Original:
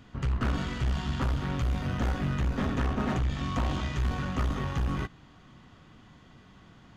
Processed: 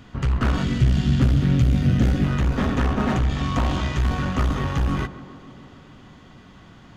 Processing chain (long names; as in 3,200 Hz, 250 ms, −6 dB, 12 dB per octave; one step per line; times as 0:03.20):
0:00.63–0:02.24: octave-band graphic EQ 125/250/1,000 Hz +7/+5/−12 dB
tape delay 139 ms, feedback 86%, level −13 dB, low-pass 1,400 Hz
level +7 dB